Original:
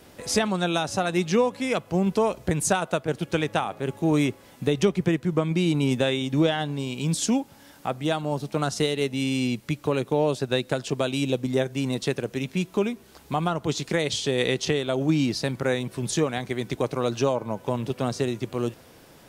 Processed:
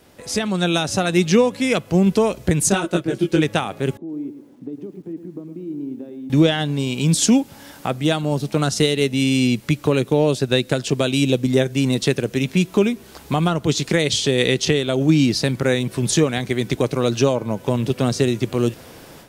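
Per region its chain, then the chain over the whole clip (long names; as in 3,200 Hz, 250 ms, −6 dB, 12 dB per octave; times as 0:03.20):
0:02.69–0:03.42: parametric band 330 Hz +11.5 dB 0.39 octaves + comb filter 5.4 ms, depth 40% + micro pitch shift up and down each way 17 cents
0:03.97–0:06.30: downward compressor 2.5 to 1, threshold −38 dBFS + resonant band-pass 290 Hz, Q 3.4 + feedback echo at a low word length 110 ms, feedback 35%, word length 11 bits, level −10 dB
whole clip: dynamic equaliser 900 Hz, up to −7 dB, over −39 dBFS, Q 0.92; automatic gain control gain up to 11.5 dB; level −1.5 dB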